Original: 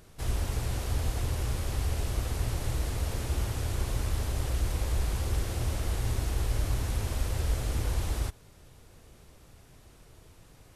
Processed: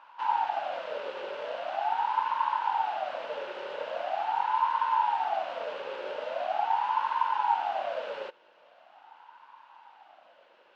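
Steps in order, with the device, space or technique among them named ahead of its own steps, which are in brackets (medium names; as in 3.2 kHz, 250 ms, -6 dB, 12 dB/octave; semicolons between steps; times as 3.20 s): voice changer toy (ring modulator with a swept carrier 730 Hz, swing 35%, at 0.42 Hz; cabinet simulation 410–3900 Hz, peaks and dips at 420 Hz -9 dB, 900 Hz +7 dB, 1.5 kHz +9 dB, 2.8 kHz +9 dB); trim -1.5 dB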